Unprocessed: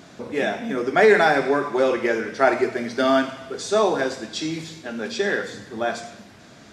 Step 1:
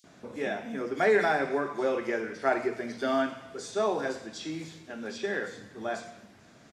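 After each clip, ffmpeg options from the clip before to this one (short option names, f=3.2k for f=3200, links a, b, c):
-filter_complex "[0:a]acrossover=split=4000[a][b];[a]adelay=40[c];[c][b]amix=inputs=2:normalize=0,volume=-8.5dB"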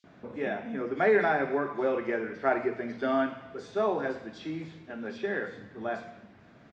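-af "lowpass=6k,bass=f=250:g=2,treble=f=4k:g=-14"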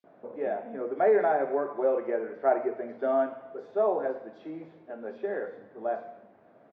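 -af "bandpass=f=590:t=q:w=1.7:csg=0,volume=4.5dB"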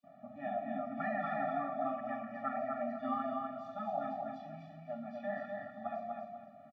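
-filter_complex "[0:a]afftfilt=real='re*lt(hypot(re,im),0.224)':imag='im*lt(hypot(re,im),0.224)':win_size=1024:overlap=0.75,asplit=2[a][b];[b]aecho=0:1:247|494|741|988:0.631|0.183|0.0531|0.0154[c];[a][c]amix=inputs=2:normalize=0,afftfilt=real='re*eq(mod(floor(b*sr/1024/280),2),0)':imag='im*eq(mod(floor(b*sr/1024/280),2),0)':win_size=1024:overlap=0.75,volume=1dB"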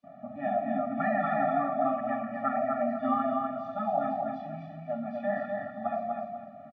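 -af "aemphasis=mode=reproduction:type=75kf,volume=9dB"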